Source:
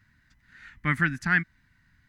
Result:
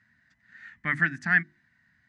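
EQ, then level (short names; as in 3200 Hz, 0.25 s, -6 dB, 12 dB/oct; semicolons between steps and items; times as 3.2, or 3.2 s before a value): speaker cabinet 100–8500 Hz, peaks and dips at 210 Hz +6 dB, 680 Hz +8 dB, 1800 Hz +9 dB; notches 50/100/150/200/250/300/350 Hz; -5.0 dB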